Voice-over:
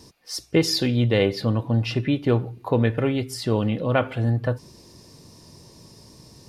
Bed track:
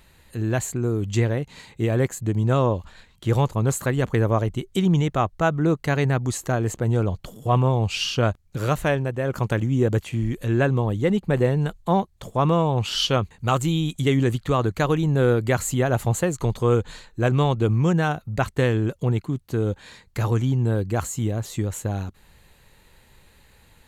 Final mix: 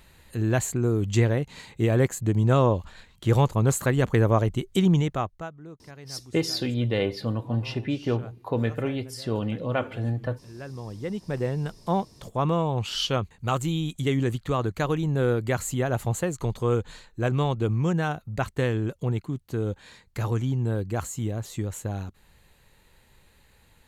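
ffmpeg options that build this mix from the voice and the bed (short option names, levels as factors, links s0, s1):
-filter_complex "[0:a]adelay=5800,volume=0.531[s0];[1:a]volume=8.41,afade=t=out:st=4.84:d=0.68:silence=0.0707946,afade=t=in:st=10.52:d=1.38:silence=0.11885[s1];[s0][s1]amix=inputs=2:normalize=0"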